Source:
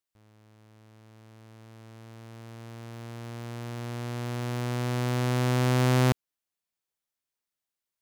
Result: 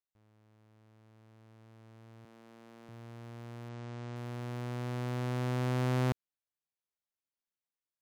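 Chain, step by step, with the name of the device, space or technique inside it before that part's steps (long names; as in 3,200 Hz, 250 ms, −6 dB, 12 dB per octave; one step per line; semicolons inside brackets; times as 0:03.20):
behind a face mask (high-shelf EQ 3,300 Hz −7 dB)
0:02.25–0:02.89: high-pass filter 180 Hz 24 dB per octave
0:03.69–0:04.16: low-pass filter 8,000 Hz 24 dB per octave
level −7.5 dB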